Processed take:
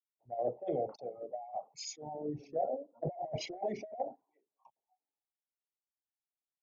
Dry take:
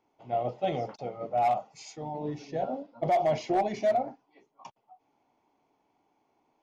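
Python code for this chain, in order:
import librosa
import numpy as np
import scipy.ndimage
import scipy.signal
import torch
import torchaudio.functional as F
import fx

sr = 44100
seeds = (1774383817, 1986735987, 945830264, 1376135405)

y = fx.envelope_sharpen(x, sr, power=2.0)
y = fx.over_compress(y, sr, threshold_db=-29.0, ratio=-0.5)
y = fx.band_widen(y, sr, depth_pct=100)
y = F.gain(torch.from_numpy(y), -7.5).numpy()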